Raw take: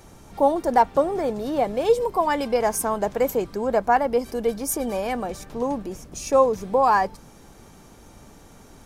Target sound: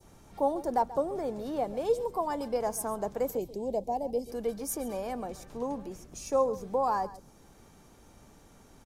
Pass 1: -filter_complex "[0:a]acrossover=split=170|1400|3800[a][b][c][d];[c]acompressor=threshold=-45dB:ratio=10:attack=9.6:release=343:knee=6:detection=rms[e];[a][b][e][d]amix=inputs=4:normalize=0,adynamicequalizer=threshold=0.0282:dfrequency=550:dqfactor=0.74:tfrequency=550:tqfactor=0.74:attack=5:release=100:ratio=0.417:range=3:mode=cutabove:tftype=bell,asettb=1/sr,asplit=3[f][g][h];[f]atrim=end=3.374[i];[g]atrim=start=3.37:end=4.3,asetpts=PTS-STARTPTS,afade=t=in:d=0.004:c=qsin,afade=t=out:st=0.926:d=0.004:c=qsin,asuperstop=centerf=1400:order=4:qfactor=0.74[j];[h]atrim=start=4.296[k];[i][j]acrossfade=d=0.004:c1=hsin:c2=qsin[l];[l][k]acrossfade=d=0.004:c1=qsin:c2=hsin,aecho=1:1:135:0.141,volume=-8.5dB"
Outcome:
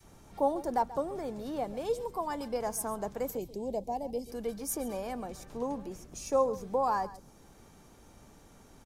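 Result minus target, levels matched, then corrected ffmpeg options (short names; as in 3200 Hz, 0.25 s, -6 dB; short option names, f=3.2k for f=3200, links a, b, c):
2000 Hz band +2.5 dB
-filter_complex "[0:a]acrossover=split=170|1400|3800[a][b][c][d];[c]acompressor=threshold=-45dB:ratio=10:attack=9.6:release=343:knee=6:detection=rms[e];[a][b][e][d]amix=inputs=4:normalize=0,adynamicequalizer=threshold=0.0282:dfrequency=1900:dqfactor=0.74:tfrequency=1900:tqfactor=0.74:attack=5:release=100:ratio=0.417:range=3:mode=cutabove:tftype=bell,asettb=1/sr,asplit=3[f][g][h];[f]atrim=end=3.374[i];[g]atrim=start=3.37:end=4.3,asetpts=PTS-STARTPTS,afade=t=in:d=0.004:c=qsin,afade=t=out:st=0.926:d=0.004:c=qsin,asuperstop=centerf=1400:order=4:qfactor=0.74[j];[h]atrim=start=4.296[k];[i][j]acrossfade=d=0.004:c1=hsin:c2=qsin[l];[l][k]acrossfade=d=0.004:c1=qsin:c2=hsin,aecho=1:1:135:0.141,volume=-8.5dB"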